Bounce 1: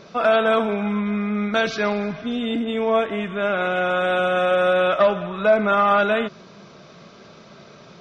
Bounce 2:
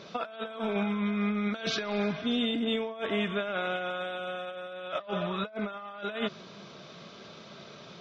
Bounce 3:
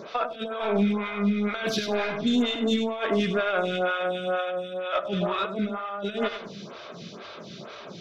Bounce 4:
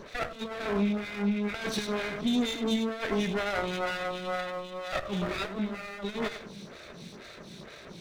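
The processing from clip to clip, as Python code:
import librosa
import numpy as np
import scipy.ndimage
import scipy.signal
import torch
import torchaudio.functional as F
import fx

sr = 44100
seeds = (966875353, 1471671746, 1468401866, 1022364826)

y1 = fx.highpass(x, sr, hz=76.0, slope=6)
y1 = fx.peak_eq(y1, sr, hz=3400.0, db=6.5, octaves=0.66)
y1 = fx.over_compress(y1, sr, threshold_db=-24.0, ratio=-0.5)
y1 = y1 * librosa.db_to_amplitude(-7.5)
y2 = 10.0 ** (-22.5 / 20.0) * np.tanh(y1 / 10.0 ** (-22.5 / 20.0))
y2 = fx.echo_feedback(y2, sr, ms=99, feedback_pct=34, wet_db=-9.0)
y2 = fx.stagger_phaser(y2, sr, hz=2.1)
y2 = y2 * librosa.db_to_amplitude(9.0)
y3 = fx.lower_of_two(y2, sr, delay_ms=0.49)
y3 = y3 * librosa.db_to_amplitude(-3.5)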